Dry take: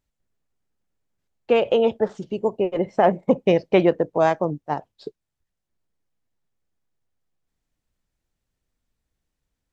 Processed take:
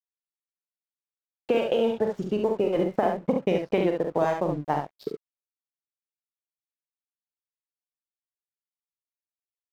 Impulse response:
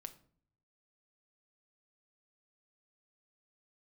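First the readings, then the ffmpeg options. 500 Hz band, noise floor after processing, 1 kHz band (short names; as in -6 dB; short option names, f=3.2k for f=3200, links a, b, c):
-4.5 dB, under -85 dBFS, -5.0 dB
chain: -filter_complex "[0:a]acompressor=threshold=-23dB:ratio=12,aeval=exprs='sgn(val(0))*max(abs(val(0))-0.00335,0)':c=same,asplit=2[a][b];[b]aecho=0:1:43|70:0.447|0.562[c];[a][c]amix=inputs=2:normalize=0,volume=2.5dB"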